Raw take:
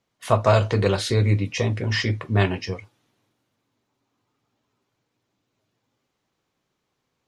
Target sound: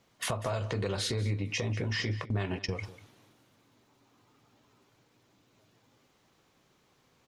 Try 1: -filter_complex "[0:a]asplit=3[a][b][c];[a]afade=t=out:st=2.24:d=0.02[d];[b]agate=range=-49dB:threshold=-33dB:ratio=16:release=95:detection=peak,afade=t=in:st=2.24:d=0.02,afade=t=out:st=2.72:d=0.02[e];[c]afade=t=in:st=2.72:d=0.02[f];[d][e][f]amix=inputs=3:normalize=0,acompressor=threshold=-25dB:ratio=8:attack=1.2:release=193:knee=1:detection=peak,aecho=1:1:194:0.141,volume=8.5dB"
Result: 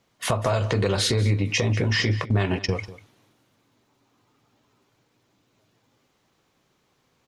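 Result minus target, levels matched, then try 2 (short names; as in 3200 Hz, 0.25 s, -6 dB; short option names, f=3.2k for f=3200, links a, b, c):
compressor: peak gain reduction -9.5 dB
-filter_complex "[0:a]asplit=3[a][b][c];[a]afade=t=out:st=2.24:d=0.02[d];[b]agate=range=-49dB:threshold=-33dB:ratio=16:release=95:detection=peak,afade=t=in:st=2.24:d=0.02,afade=t=out:st=2.72:d=0.02[e];[c]afade=t=in:st=2.72:d=0.02[f];[d][e][f]amix=inputs=3:normalize=0,acompressor=threshold=-36dB:ratio=8:attack=1.2:release=193:knee=1:detection=peak,aecho=1:1:194:0.141,volume=8.5dB"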